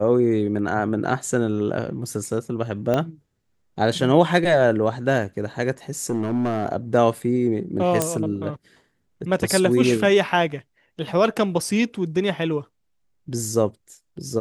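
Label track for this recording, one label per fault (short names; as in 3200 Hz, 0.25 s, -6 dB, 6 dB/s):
2.940000	2.940000	pop -10 dBFS
6.040000	6.660000	clipped -18 dBFS
8.020000	8.020000	pop -5 dBFS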